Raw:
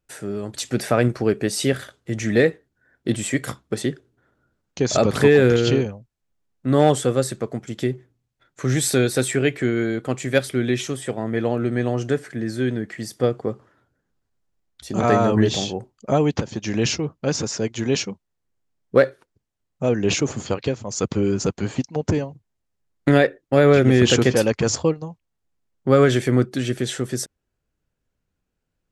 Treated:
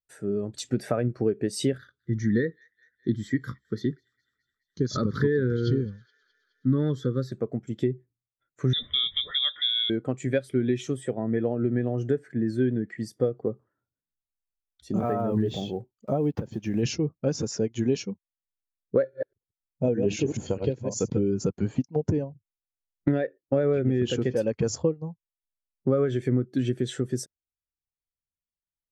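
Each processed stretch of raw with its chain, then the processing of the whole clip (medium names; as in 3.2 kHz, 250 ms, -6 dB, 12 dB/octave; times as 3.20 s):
1.78–7.32 s: static phaser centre 2.6 kHz, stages 6 + feedback echo behind a high-pass 210 ms, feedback 75%, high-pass 1.5 kHz, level -20 dB
8.73–9.90 s: peaking EQ 1.1 kHz -4 dB 1 oct + compression 1.5:1, threshold -28 dBFS + frequency inversion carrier 3.7 kHz
14.96–16.83 s: block-companded coder 5-bit + dynamic bell 5.9 kHz, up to -7 dB, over -42 dBFS, Q 0.83 + compression 1.5:1, threshold -26 dBFS
19.02–21.19 s: chunks repeated in reverse 104 ms, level -5 dB + band-stop 1.2 kHz, Q 5.7
whole clip: compression 10:1, threshold -21 dBFS; spectral contrast expander 1.5:1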